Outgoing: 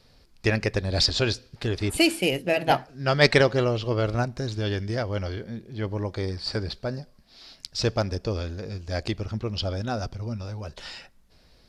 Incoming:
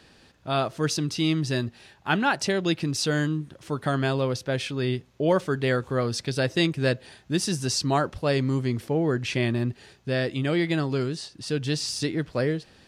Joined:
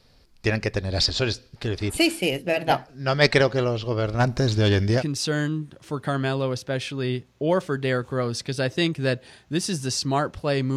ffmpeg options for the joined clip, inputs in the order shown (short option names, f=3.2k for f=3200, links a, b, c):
-filter_complex "[0:a]asplit=3[a][b][c];[a]afade=t=out:st=4.19:d=0.02[d];[b]aeval=exprs='0.224*sin(PI/2*1.78*val(0)/0.224)':c=same,afade=t=in:st=4.19:d=0.02,afade=t=out:st=5.03:d=0.02[e];[c]afade=t=in:st=5.03:d=0.02[f];[d][e][f]amix=inputs=3:normalize=0,apad=whole_dur=10.76,atrim=end=10.76,atrim=end=5.03,asetpts=PTS-STARTPTS[g];[1:a]atrim=start=2.76:end=8.55,asetpts=PTS-STARTPTS[h];[g][h]acrossfade=d=0.06:c1=tri:c2=tri"